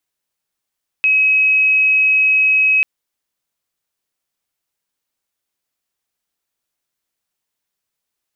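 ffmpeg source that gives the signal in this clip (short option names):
-f lavfi -i "sine=f=2550:d=1.79:r=44100,volume=8.06dB"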